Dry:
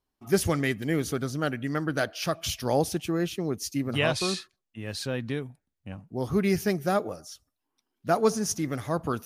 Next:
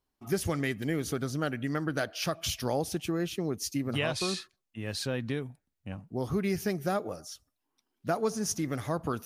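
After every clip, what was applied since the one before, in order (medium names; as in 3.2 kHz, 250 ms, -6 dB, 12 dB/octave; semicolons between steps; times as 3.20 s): compression 2.5:1, threshold -28 dBFS, peak gain reduction 8 dB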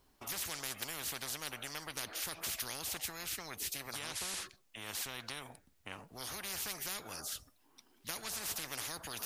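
spectrum-flattening compressor 10:1; trim -6 dB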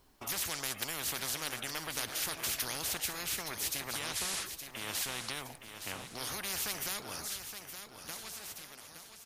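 fade out at the end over 2.56 s; feedback delay 868 ms, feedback 42%, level -9 dB; trim +4 dB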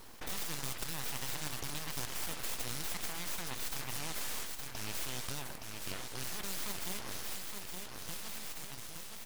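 flange 0.29 Hz, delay 5.7 ms, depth 1.5 ms, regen -83%; full-wave rectifier; level flattener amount 50%; trim +2.5 dB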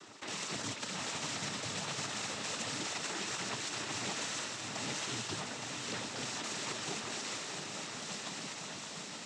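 flange 0.29 Hz, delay 2.7 ms, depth 2.3 ms, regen +28%; noise-vocoded speech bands 12; echo that smears into a reverb 720 ms, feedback 48%, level -5.5 dB; trim +7.5 dB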